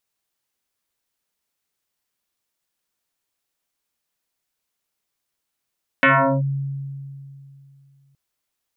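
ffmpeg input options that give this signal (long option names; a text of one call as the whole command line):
ffmpeg -f lavfi -i "aevalsrc='0.316*pow(10,-3*t/2.75)*sin(2*PI*138*t+5.8*clip(1-t/0.39,0,1)*sin(2*PI*2.95*138*t))':duration=2.12:sample_rate=44100" out.wav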